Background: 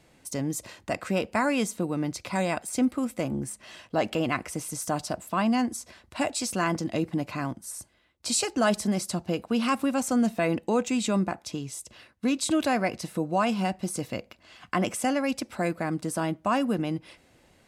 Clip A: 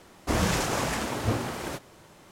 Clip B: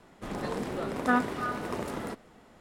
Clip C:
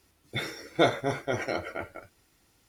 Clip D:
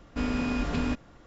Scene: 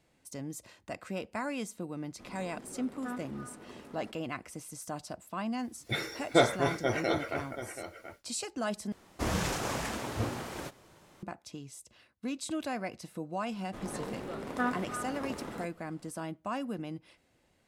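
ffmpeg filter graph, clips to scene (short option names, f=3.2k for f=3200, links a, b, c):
-filter_complex "[2:a]asplit=2[a][b];[0:a]volume=-10.5dB[c];[a]equalizer=f=260:w=1.5:g=5[d];[3:a]aecho=1:1:731:0.282[e];[c]asplit=2[f][g];[f]atrim=end=8.924[h];[1:a]atrim=end=2.31,asetpts=PTS-STARTPTS,volume=-6dB[i];[g]atrim=start=11.226[j];[d]atrim=end=2.6,asetpts=PTS-STARTPTS,volume=-17dB,afade=t=in:d=0.004:c=hsin,afade=t=out:st=2.596:d=0.004:c=hsin,adelay=1970[k];[e]atrim=end=2.68,asetpts=PTS-STARTPTS,volume=-0.5dB,afade=t=in:d=0.1,afade=t=out:st=2.58:d=0.1,adelay=5560[l];[b]atrim=end=2.6,asetpts=PTS-STARTPTS,volume=-6dB,afade=t=in:d=0.004:c=hsin,afade=t=out:st=2.596:d=0.004:c=hsin,adelay=13510[m];[h][i]acrossfade=d=0.004:c1=hsin:c2=hsin[n];[n][j]acrossfade=d=0.004:c1=hsin:c2=hsin[o];[o][k][l][m]amix=inputs=4:normalize=0"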